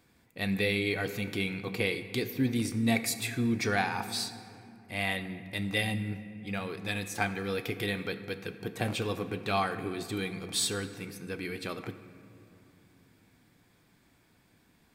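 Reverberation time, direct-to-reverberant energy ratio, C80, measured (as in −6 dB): 2.7 s, 10.0 dB, 12.0 dB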